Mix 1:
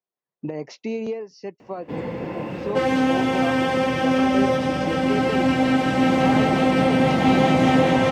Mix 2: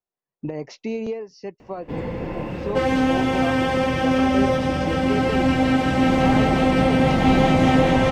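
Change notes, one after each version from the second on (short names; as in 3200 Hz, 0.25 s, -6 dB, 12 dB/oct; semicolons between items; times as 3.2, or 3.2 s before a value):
master: remove HPF 130 Hz 12 dB/oct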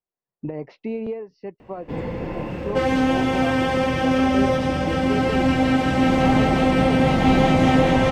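speech: add air absorption 360 m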